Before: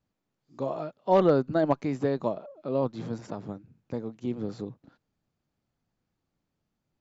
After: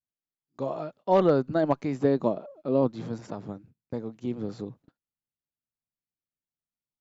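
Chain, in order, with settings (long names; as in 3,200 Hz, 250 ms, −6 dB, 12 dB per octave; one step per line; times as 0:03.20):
noise gate −51 dBFS, range −23 dB
0:02.04–0:02.93: dynamic equaliser 280 Hz, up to +6 dB, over −39 dBFS, Q 0.77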